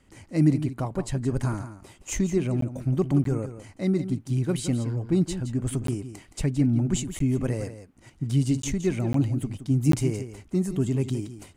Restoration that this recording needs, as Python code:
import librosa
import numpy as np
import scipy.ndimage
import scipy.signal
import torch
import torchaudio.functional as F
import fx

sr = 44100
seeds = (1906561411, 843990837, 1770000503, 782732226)

y = fx.fix_interpolate(x, sr, at_s=(2.61, 3.24, 5.87, 7.19, 8.62, 9.13, 9.92), length_ms=13.0)
y = fx.fix_echo_inverse(y, sr, delay_ms=170, level_db=-11.5)